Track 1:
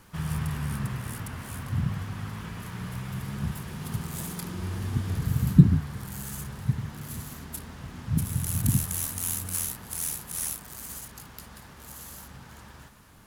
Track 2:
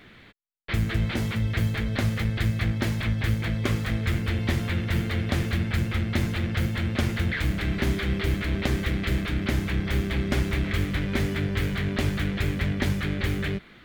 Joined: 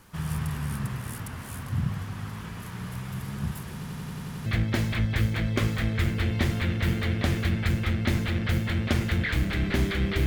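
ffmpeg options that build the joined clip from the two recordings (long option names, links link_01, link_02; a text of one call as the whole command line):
ffmpeg -i cue0.wav -i cue1.wav -filter_complex "[0:a]apad=whole_dur=10.26,atrim=end=10.26,asplit=8[link_01][link_02][link_03][link_04][link_05][link_06][link_07][link_08];[link_01]atrim=end=3.832[link_09];[link_02]atrim=start=3.738:end=3.832[link_10];[link_03]atrim=start=3.738:end=3.832[link_11];[link_04]atrim=start=3.738:end=3.832[link_12];[link_05]atrim=start=3.738:end=3.832[link_13];[link_06]atrim=start=3.738:end=3.832[link_14];[link_07]atrim=start=3.738:end=3.832[link_15];[link_08]atrim=start=3.738:end=3.832[link_16];[1:a]atrim=start=2.538:end=8.34[link_17];[link_09][link_10]acrossfade=duration=0.004:curve1=hsin:curve2=hsin[link_18];[link_18][link_11]acrossfade=duration=0.004:curve1=hsin:curve2=hsin[link_19];[link_19][link_12]acrossfade=duration=0.004:curve1=hsin:curve2=hsin[link_20];[link_20][link_13]acrossfade=duration=0.004:curve1=hsin:curve2=hsin[link_21];[link_21][link_14]acrossfade=duration=0.004:curve1=hsin:curve2=hsin[link_22];[link_22][link_15]acrossfade=duration=0.004:curve1=hsin:curve2=hsin[link_23];[link_23][link_16]acrossfade=duration=0.004:curve1=hsin:curve2=hsin[link_24];[link_24][link_17]acrossfade=duration=0.004:curve1=hsin:curve2=hsin" out.wav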